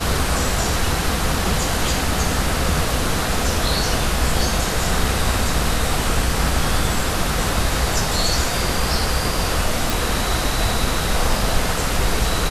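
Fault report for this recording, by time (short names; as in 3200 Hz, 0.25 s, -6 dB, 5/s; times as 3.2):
9.9 pop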